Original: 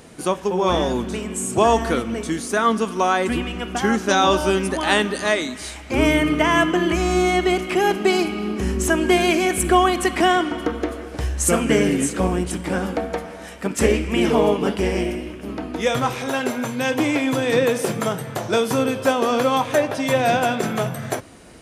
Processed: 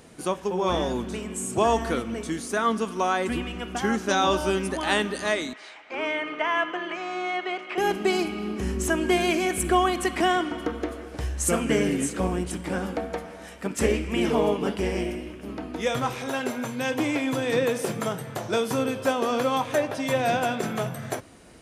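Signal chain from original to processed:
0:05.53–0:07.78: band-pass filter 600–3,000 Hz
level −5.5 dB

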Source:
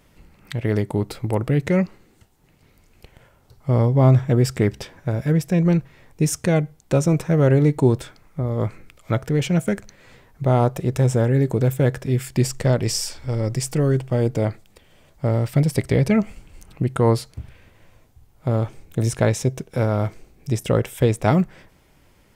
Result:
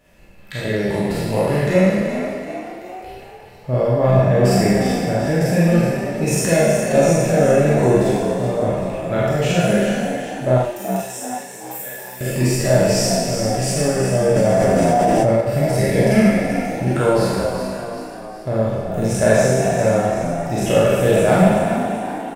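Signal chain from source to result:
peak hold with a decay on every bin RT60 1.60 s
0:10.58–0:12.21: first-order pre-emphasis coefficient 0.97
in parallel at −5 dB: hard clipping −10.5 dBFS, distortion −17 dB
on the sum: hollow resonant body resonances 600/1,700/2,600 Hz, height 11 dB, ringing for 35 ms
on a send: echo with shifted repeats 380 ms, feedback 51%, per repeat +62 Hz, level −8.5 dB
on the sum: four-comb reverb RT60 0.33 s, combs from 32 ms, DRR −3 dB
0:14.36–0:15.41: envelope flattener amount 100%
level −9.5 dB

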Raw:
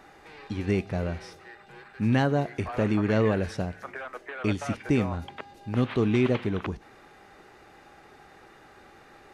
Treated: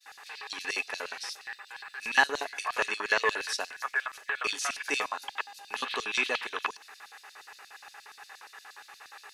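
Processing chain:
spectral tilt +3.5 dB per octave
hollow resonant body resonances 270/420/1,700/2,600 Hz, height 14 dB, ringing for 65 ms
auto-filter high-pass square 8.5 Hz 960–4,300 Hz
downward expander −49 dBFS

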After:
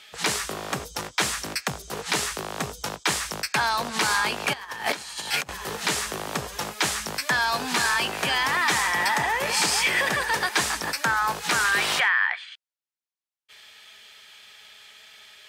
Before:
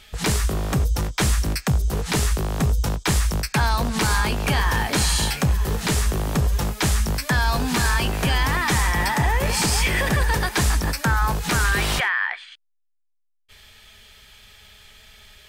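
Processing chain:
0:04.53–0:05.49: compressor whose output falls as the input rises −27 dBFS, ratio −0.5
meter weighting curve A

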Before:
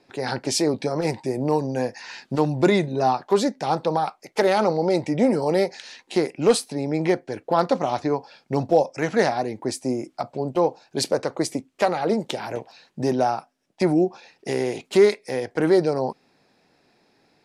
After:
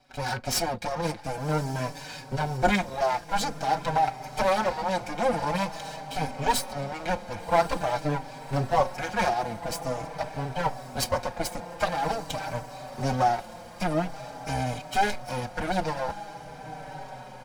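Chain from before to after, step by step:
lower of the sound and its delayed copy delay 1.3 ms
low-shelf EQ 140 Hz −3.5 dB
on a send: feedback delay with all-pass diffusion 1,142 ms, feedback 68%, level −15 dB
on the sum: barber-pole flanger 4.8 ms −0.47 Hz
level +2 dB

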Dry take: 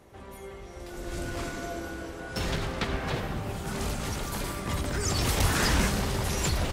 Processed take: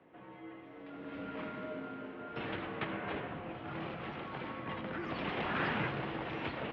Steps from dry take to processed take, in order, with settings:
single-sideband voice off tune −67 Hz 210–3,100 Hz
level −5.5 dB

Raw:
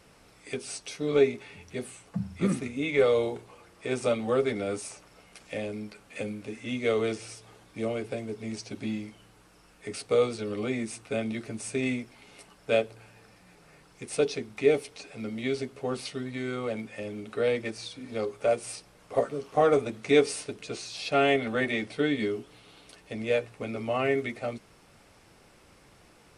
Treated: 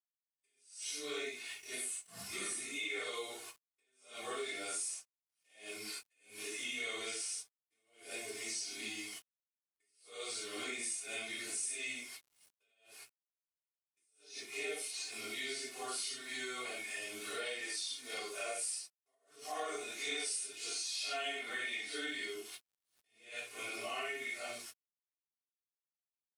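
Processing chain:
random phases in long frames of 200 ms
noise gate −47 dBFS, range −30 dB
first difference
comb filter 2.8 ms, depth 68%
log-companded quantiser 8 bits
downward compressor 4 to 1, threshold −59 dBFS, peak gain reduction 22 dB
level that may rise only so fast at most 130 dB per second
level +18 dB

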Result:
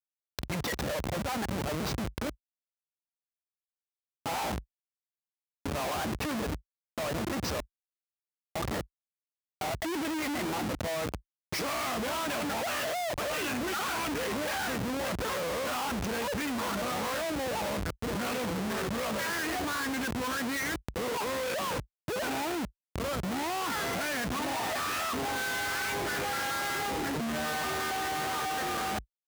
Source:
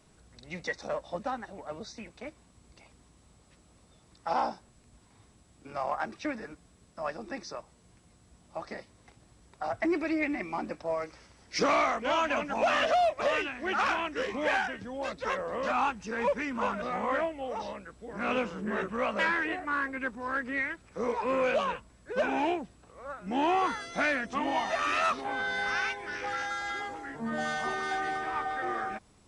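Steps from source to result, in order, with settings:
comparator with hysteresis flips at −43 dBFS
high-pass filter 55 Hz 24 dB per octave
envelope flattener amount 70%

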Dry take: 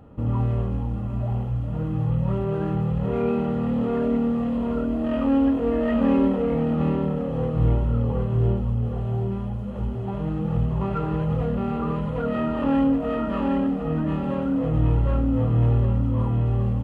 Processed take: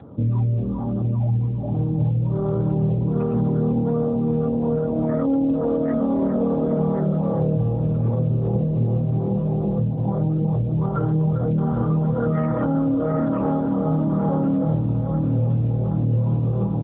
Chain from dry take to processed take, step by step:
bucket-brigade delay 398 ms, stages 4,096, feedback 73%, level −5 dB
gate on every frequency bin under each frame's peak −25 dB strong
brickwall limiter −15 dBFS, peak gain reduction 7.5 dB
high-shelf EQ 2,600 Hz −4 dB
on a send: repeating echo 1,079 ms, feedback 39%, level −12 dB
on the sum: dynamic equaliser 110 Hz, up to +5 dB, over −30 dBFS, Q 2.2
downward compressor 5 to 1, threshold −25 dBFS, peak gain reduction 9.5 dB
level +7.5 dB
AMR narrowband 10.2 kbit/s 8,000 Hz

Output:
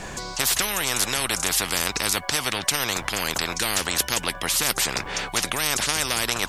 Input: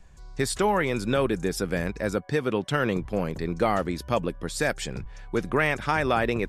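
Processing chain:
every bin compressed towards the loudest bin 10 to 1
level +8.5 dB

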